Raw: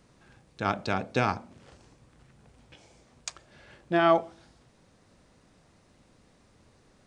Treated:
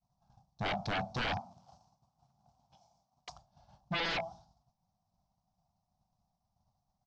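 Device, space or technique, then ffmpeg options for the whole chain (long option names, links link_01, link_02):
synthesiser wavefolder: -filter_complex "[0:a]firequalizer=gain_entry='entry(190,0);entry(280,-17);entry(440,-26);entry(720,8);entry(1800,-27);entry(5600,11)':delay=0.05:min_phase=1,aeval=exprs='0.0335*(abs(mod(val(0)/0.0335+3,4)-2)-1)':channel_layout=same,lowpass=frequency=4100:width=0.5412,lowpass=frequency=4100:width=1.3066,agate=range=-33dB:threshold=-50dB:ratio=3:detection=peak,asettb=1/sr,asplit=3[link_01][link_02][link_03];[link_01]atrim=end=1.404[link_04];[link_02]atrim=start=1.4:end=3.29,asetpts=PTS-STARTPTS,afade=type=in:duration=0.004:curve=qsin,afade=type=out:start_time=1.886:duration=0.004:curve=qsin,highpass=frequency=230:poles=1[link_05];[link_03]atrim=start=3.286[link_06];[link_04][link_05]acrossfade=duration=0.004:curve1=hsin:curve2=qsin[link_07];[link_07][link_06]acrossfade=duration=0.004:curve1=qsin:curve2=hsin,volume=1.5dB"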